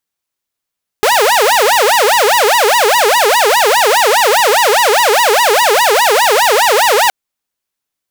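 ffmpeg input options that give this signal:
-f lavfi -i "aevalsrc='0.562*(2*mod((692.5*t-286.5/(2*PI*4.9)*sin(2*PI*4.9*t)),1)-1)':d=6.07:s=44100"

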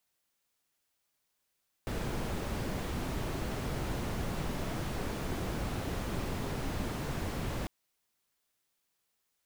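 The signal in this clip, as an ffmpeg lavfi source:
-f lavfi -i "anoisesrc=c=brown:a=0.0881:d=5.8:r=44100:seed=1"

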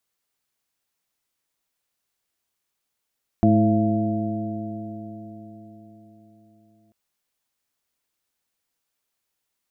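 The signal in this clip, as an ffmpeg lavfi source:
-f lavfi -i "aevalsrc='0.106*pow(10,-3*t/4.62)*sin(2*PI*106.21*t)+0.168*pow(10,-3*t/4.62)*sin(2*PI*213.69*t)+0.112*pow(10,-3*t/4.62)*sin(2*PI*323.67*t)+0.0178*pow(10,-3*t/4.62)*sin(2*PI*437.36*t)+0.0168*pow(10,-3*t/4.62)*sin(2*PI*555.87*t)+0.0944*pow(10,-3*t/4.62)*sin(2*PI*680.25*t)':d=3.49:s=44100"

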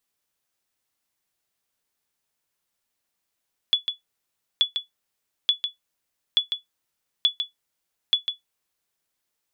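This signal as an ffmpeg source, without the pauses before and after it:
-f lavfi -i "aevalsrc='0.316*(sin(2*PI*3420*mod(t,0.88))*exp(-6.91*mod(t,0.88)/0.14)+0.422*sin(2*PI*3420*max(mod(t,0.88)-0.15,0))*exp(-6.91*max(mod(t,0.88)-0.15,0)/0.14))':d=5.28:s=44100"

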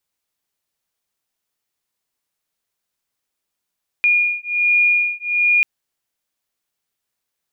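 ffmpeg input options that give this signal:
-f lavfi -i "aevalsrc='0.141*(sin(2*PI*2430*t)+sin(2*PI*2431.3*t))':d=1.59:s=44100"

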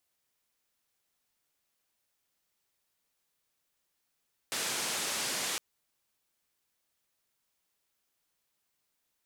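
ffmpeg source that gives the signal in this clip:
-f lavfi -i "anoisesrc=c=white:d=1.06:r=44100:seed=1,highpass=f=160,lowpass=f=8800,volume=-25.2dB"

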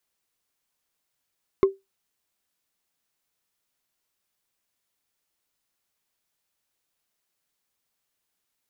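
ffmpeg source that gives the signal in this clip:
-f lavfi -i "aevalsrc='0.316*pow(10,-3*t/0.19)*sin(2*PI*389*t)+0.1*pow(10,-3*t/0.056)*sin(2*PI*1072.5*t)+0.0316*pow(10,-3*t/0.025)*sin(2*PI*2102.2*t)+0.01*pow(10,-3*t/0.014)*sin(2*PI*3474.9*t)+0.00316*pow(10,-3*t/0.008)*sin(2*PI*5189.3*t)':d=0.45:s=44100"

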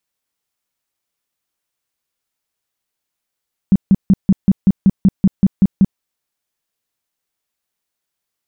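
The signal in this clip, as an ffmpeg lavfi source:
-f lavfi -i "aevalsrc='0.531*sin(2*PI*193*mod(t,0.19))*lt(mod(t,0.19),7/193)':d=2.28:s=44100"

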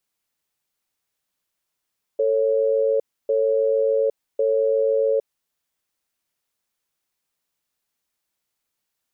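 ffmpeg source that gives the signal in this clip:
-f lavfi -i "aevalsrc='0.106*(sin(2*PI*445*t)+sin(2*PI*552*t))*clip(min(mod(t,1.1),0.81-mod(t,1.1))/0.005,0,1)':d=3.07:s=44100"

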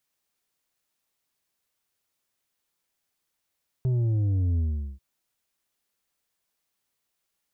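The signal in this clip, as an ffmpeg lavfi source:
-f lavfi -i "aevalsrc='0.0794*clip((1.14-t)/0.41,0,1)*tanh(2*sin(2*PI*130*1.14/log(65/130)*(exp(log(65/130)*t/1.14)-1)))/tanh(2)':d=1.14:s=44100"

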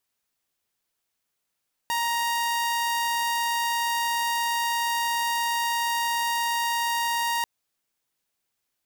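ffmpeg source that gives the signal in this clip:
-f lavfi -i "aevalsrc='0.0891*(2*mod(937*t,1)-1)':d=5.54:s=44100"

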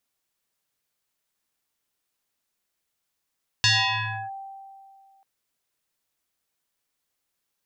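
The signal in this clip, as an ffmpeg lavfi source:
-f lavfi -i "aevalsrc='0.178*pow(10,-3*t/2.26)*sin(2*PI*781*t+5.8*clip(1-t/0.66,0,1)*sin(2*PI*1.14*781*t))':d=1.59:s=44100"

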